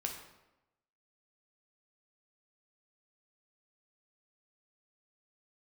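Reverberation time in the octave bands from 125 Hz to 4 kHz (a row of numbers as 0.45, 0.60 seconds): 0.95, 0.95, 1.0, 0.95, 0.80, 0.70 seconds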